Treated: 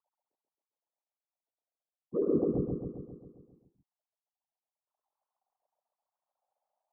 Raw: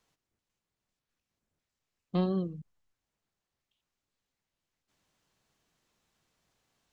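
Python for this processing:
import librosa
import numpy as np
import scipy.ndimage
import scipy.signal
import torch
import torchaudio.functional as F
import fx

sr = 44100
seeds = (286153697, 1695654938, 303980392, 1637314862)

y = fx.sine_speech(x, sr)
y = scipy.signal.sosfilt(scipy.signal.cheby2(4, 60, 2900.0, 'lowpass', fs=sr, output='sos'), y)
y = fx.whisperise(y, sr, seeds[0])
y = fx.echo_feedback(y, sr, ms=134, feedback_pct=60, wet_db=-3.0)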